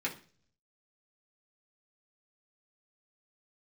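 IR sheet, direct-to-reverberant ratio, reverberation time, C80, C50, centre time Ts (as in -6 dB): -4.0 dB, 0.40 s, 18.0 dB, 13.0 dB, 13 ms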